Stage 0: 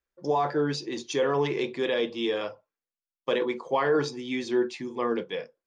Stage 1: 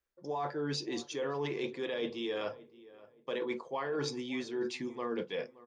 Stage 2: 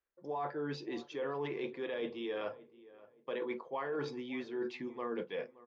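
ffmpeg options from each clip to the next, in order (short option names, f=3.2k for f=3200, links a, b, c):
-filter_complex "[0:a]areverse,acompressor=threshold=-33dB:ratio=6,areverse,asplit=2[a][b];[b]adelay=572,lowpass=f=1.8k:p=1,volume=-19dB,asplit=2[c][d];[d]adelay=572,lowpass=f=1.8k:p=1,volume=0.33,asplit=2[e][f];[f]adelay=572,lowpass=f=1.8k:p=1,volume=0.33[g];[a][c][e][g]amix=inputs=4:normalize=0"
-af "lowpass=2.7k,lowshelf=f=140:g=-7.5,volume=-1.5dB"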